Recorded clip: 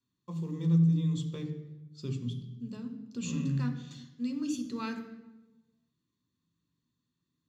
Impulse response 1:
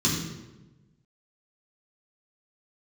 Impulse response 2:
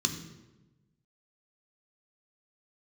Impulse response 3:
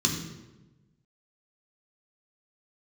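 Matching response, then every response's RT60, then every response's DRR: 2; 1.1, 1.1, 1.1 s; -6.5, 4.5, 0.0 dB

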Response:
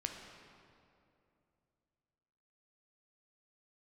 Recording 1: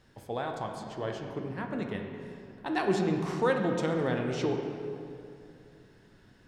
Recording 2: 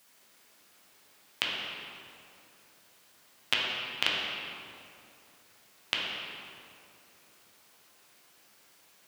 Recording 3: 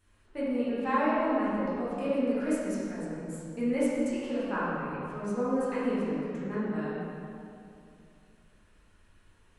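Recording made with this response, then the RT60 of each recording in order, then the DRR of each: 1; 2.7, 2.6, 2.6 s; 2.5, -4.5, -10.0 dB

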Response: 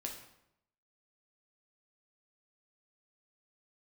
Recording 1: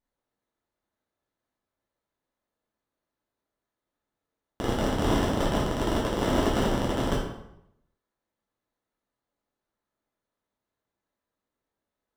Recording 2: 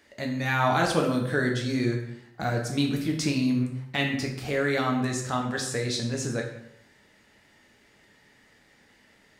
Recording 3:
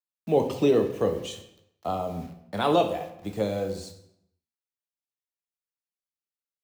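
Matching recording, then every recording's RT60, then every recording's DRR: 2; 0.80, 0.80, 0.80 s; -7.0, 0.5, 5.5 dB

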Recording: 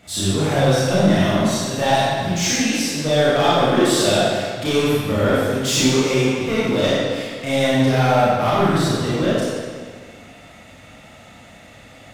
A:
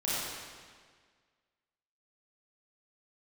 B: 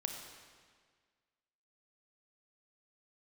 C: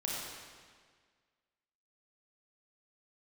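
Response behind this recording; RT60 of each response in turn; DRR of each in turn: A; 1.7, 1.7, 1.7 s; -9.5, 3.0, -4.5 dB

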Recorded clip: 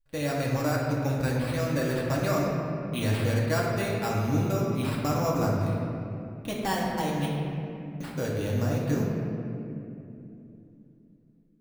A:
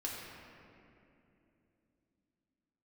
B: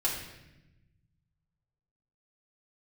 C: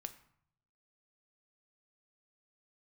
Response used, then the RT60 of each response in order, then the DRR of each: A; 2.9, 0.95, 0.65 s; -4.5, -5.5, 8.5 dB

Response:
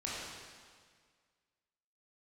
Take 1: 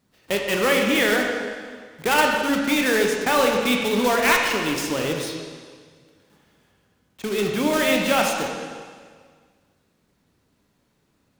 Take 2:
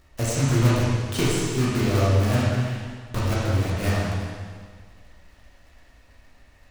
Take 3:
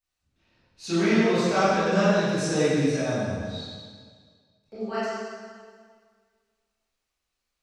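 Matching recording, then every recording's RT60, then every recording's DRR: 2; 1.8, 1.8, 1.8 s; 0.5, -7.0, -14.0 dB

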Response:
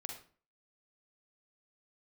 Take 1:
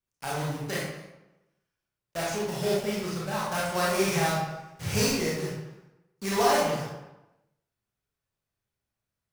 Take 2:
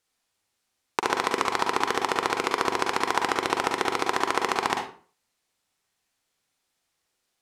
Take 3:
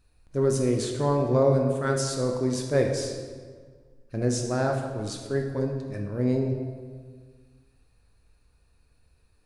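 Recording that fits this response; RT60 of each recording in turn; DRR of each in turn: 2; 1.0, 0.40, 1.7 s; -6.0, 1.5, 2.5 dB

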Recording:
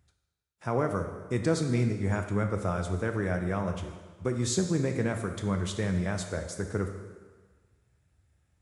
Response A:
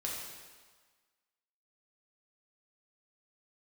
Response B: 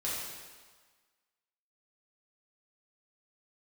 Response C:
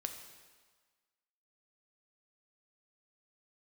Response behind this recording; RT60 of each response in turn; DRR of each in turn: C; 1.5, 1.5, 1.5 s; -4.0, -8.0, 5.0 dB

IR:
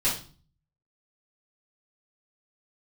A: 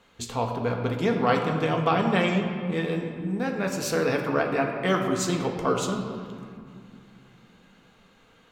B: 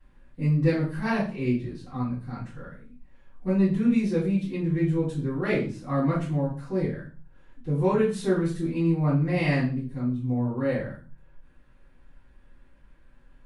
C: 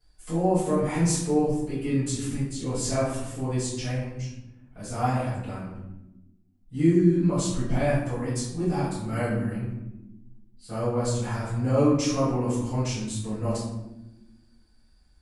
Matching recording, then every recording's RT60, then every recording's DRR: B; 2.4, 0.40, 1.1 s; 1.5, -10.5, -13.5 dB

